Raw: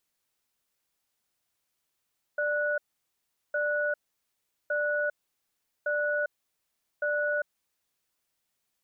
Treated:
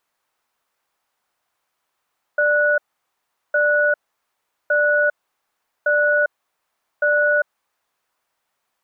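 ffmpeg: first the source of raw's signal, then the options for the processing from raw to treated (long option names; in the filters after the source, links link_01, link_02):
-f lavfi -i "aevalsrc='0.0398*(sin(2*PI*591*t)+sin(2*PI*1470*t))*clip(min(mod(t,1.16),0.4-mod(t,1.16))/0.005,0,1)':duration=5.41:sample_rate=44100"
-af "equalizer=frequency=1000:width=0.51:gain=14.5"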